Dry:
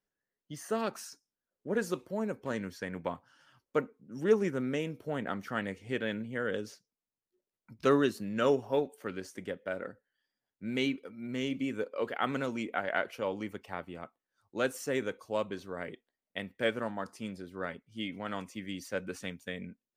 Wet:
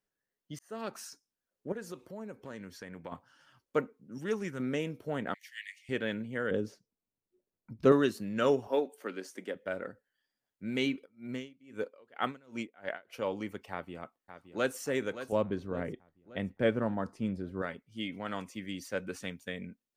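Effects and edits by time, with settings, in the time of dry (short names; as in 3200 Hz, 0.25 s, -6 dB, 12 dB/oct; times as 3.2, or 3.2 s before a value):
0.59–1.06 fade in
1.72–3.12 compressor 2:1, threshold -46 dBFS
4.18–4.6 bell 440 Hz -8.5 dB 2.6 oct
5.34–5.89 steep high-pass 1800 Hz 96 dB/oct
6.51–7.92 tilt shelf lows +7 dB, about 860 Hz
8.67–9.55 HPF 220 Hz 24 dB/oct
11.04–13.13 dB-linear tremolo 1.5 Hz -> 4 Hz, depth 29 dB
13.71–14.78 echo throw 0.57 s, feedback 50%, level -11.5 dB
15.32–17.62 tilt -3 dB/oct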